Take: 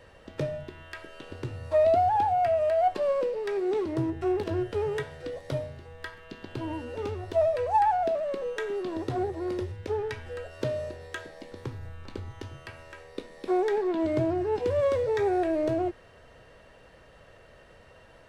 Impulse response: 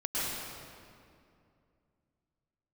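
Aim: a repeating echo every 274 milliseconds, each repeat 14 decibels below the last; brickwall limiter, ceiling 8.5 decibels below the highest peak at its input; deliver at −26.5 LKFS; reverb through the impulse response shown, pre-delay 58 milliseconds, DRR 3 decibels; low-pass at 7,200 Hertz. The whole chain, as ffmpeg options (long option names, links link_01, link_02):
-filter_complex "[0:a]lowpass=7200,alimiter=limit=-22dB:level=0:latency=1,aecho=1:1:274|548:0.2|0.0399,asplit=2[link_01][link_02];[1:a]atrim=start_sample=2205,adelay=58[link_03];[link_02][link_03]afir=irnorm=-1:irlink=0,volume=-11dB[link_04];[link_01][link_04]amix=inputs=2:normalize=0,volume=2.5dB"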